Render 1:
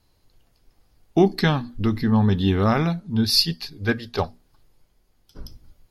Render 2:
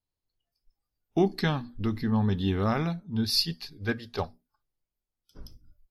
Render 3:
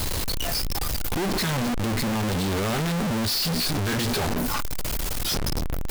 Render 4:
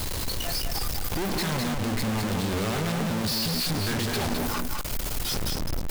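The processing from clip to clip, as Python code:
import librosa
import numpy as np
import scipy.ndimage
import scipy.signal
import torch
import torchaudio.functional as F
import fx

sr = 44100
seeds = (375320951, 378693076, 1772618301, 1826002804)

y1 = fx.noise_reduce_blind(x, sr, reduce_db=19)
y1 = F.gain(torch.from_numpy(y1), -7.0).numpy()
y2 = np.sign(y1) * np.sqrt(np.mean(np.square(y1)))
y2 = F.gain(torch.from_numpy(y2), 6.0).numpy()
y3 = y2 + 10.0 ** (-4.5 / 20.0) * np.pad(y2, (int(208 * sr / 1000.0), 0))[:len(y2)]
y3 = F.gain(torch.from_numpy(y3), -3.5).numpy()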